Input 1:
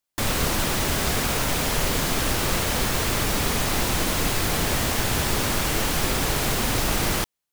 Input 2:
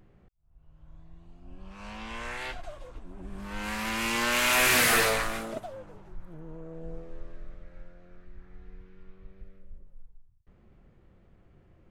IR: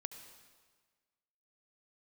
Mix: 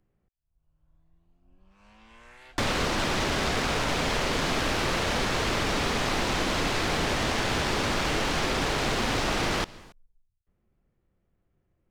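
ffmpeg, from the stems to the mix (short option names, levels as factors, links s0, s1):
-filter_complex "[0:a]adynamicsmooth=sensitivity=6.5:basefreq=3600,adelay=2400,volume=1.19,asplit=2[s0][s1];[s1]volume=0.335[s2];[1:a]volume=0.188[s3];[2:a]atrim=start_sample=2205[s4];[s2][s4]afir=irnorm=-1:irlink=0[s5];[s0][s3][s5]amix=inputs=3:normalize=0,acrossover=split=210|6300[s6][s7][s8];[s6]acompressor=threshold=0.0251:ratio=4[s9];[s7]acompressor=threshold=0.0562:ratio=4[s10];[s8]acompressor=threshold=0.00355:ratio=4[s11];[s9][s10][s11]amix=inputs=3:normalize=0"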